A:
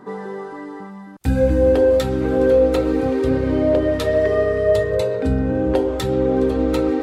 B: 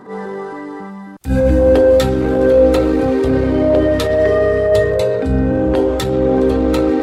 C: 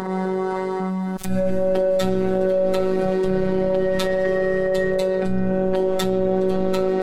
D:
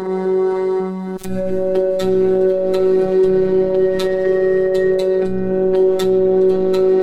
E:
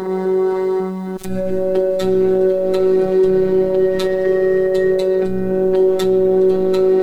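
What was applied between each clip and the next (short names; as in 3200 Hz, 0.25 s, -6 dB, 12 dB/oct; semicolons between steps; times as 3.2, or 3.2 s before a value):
transient shaper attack -11 dB, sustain +3 dB; gain +5 dB
low shelf 91 Hz +7 dB; robotiser 188 Hz; fast leveller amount 70%; gain -8 dB
small resonant body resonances 370/4000 Hz, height 10 dB, ringing for 35 ms; gain -1 dB
bit-crush 9-bit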